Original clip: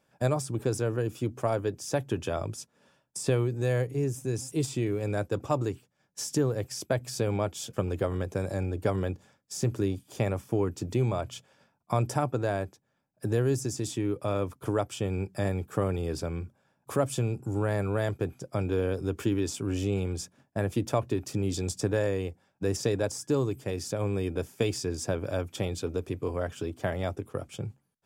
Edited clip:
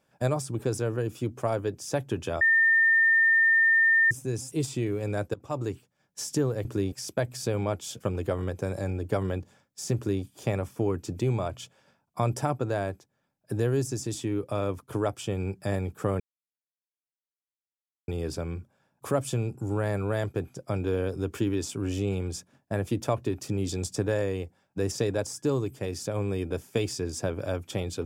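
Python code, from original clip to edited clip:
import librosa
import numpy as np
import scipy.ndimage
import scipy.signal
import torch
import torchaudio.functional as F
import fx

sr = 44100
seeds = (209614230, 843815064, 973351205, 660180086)

y = fx.edit(x, sr, fx.bleep(start_s=2.41, length_s=1.7, hz=1810.0, db=-17.5),
    fx.fade_in_from(start_s=5.34, length_s=0.37, floor_db=-19.0),
    fx.duplicate(start_s=9.69, length_s=0.27, to_s=6.65),
    fx.insert_silence(at_s=15.93, length_s=1.88), tone=tone)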